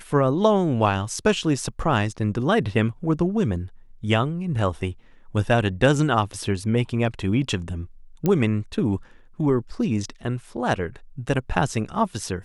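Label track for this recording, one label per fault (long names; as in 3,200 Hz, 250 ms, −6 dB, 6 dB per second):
8.260000	8.260000	click −10 dBFS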